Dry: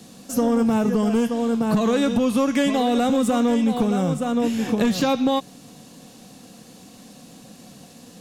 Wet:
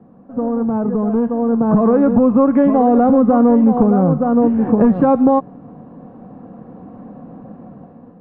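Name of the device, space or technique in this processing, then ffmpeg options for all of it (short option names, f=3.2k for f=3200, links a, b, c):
action camera in a waterproof case: -filter_complex "[0:a]asettb=1/sr,asplit=3[a][b][c];[a]atrim=end=1.924[d];[b]atrim=start=1.92:end=2.4,asetpts=PTS-STARTPTS,afade=t=in:d=0.004:c=qsin,afade=t=out:st=0.476:d=0.004:c=qsin,lowpass=3.4k[e];[c]atrim=start=2.396[f];[d][e]acrossfade=d=0.004:c1=hsin:c2=qsin[g];[g][f]acrossfade=d=0.004:c1=qsin:c2=hsin,lowpass=f=1.2k:w=0.5412,lowpass=f=1.2k:w=1.3066,dynaudnorm=f=540:g=5:m=11.5dB" -ar 48000 -c:a aac -b:a 96k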